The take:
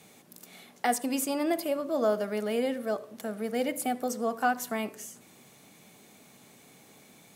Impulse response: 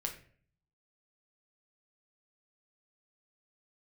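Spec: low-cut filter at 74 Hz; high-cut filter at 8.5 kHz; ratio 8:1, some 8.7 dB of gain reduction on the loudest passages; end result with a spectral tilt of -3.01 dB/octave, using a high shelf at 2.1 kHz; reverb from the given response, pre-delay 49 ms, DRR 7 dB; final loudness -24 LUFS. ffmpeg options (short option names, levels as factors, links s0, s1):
-filter_complex "[0:a]highpass=74,lowpass=8500,highshelf=f=2100:g=4.5,acompressor=threshold=0.0355:ratio=8,asplit=2[s0][s1];[1:a]atrim=start_sample=2205,adelay=49[s2];[s1][s2]afir=irnorm=-1:irlink=0,volume=0.422[s3];[s0][s3]amix=inputs=2:normalize=0,volume=3.16"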